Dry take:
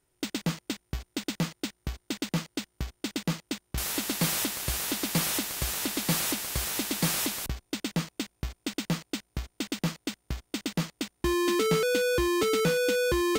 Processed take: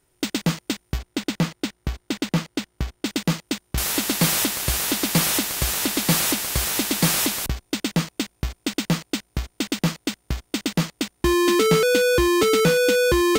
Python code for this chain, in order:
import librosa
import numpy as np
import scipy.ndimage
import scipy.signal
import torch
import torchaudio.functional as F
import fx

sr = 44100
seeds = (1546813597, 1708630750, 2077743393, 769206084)

y = fx.high_shelf(x, sr, hz=4600.0, db=-6.0, at=(0.98, 3.06))
y = F.gain(torch.from_numpy(y), 7.5).numpy()